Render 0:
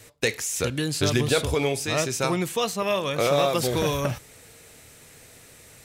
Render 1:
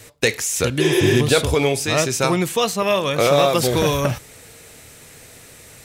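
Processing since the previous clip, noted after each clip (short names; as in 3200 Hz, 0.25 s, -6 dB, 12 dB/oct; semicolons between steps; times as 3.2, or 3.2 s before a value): spectral repair 0.83–1.14, 330–9500 Hz after; gain +6 dB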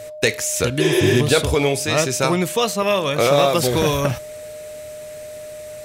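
whine 610 Hz -32 dBFS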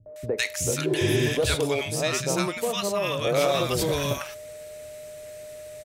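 three bands offset in time lows, mids, highs 60/160 ms, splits 220/950 Hz; gain -6 dB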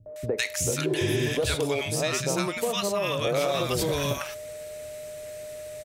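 compressor 2.5:1, threshold -26 dBFS, peak gain reduction 6 dB; gain +2 dB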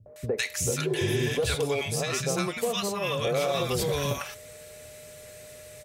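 notch comb 310 Hz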